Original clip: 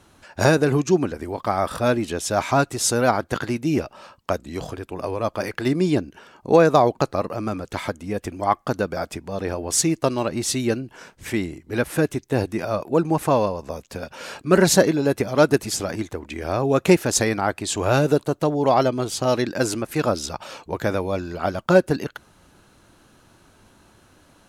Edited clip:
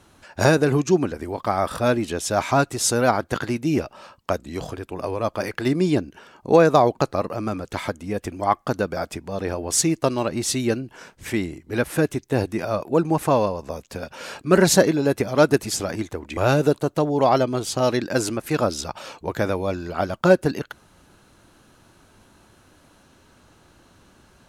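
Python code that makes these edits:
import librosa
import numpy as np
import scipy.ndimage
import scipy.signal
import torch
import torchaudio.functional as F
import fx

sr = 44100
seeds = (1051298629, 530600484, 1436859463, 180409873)

y = fx.edit(x, sr, fx.cut(start_s=16.37, length_s=1.45), tone=tone)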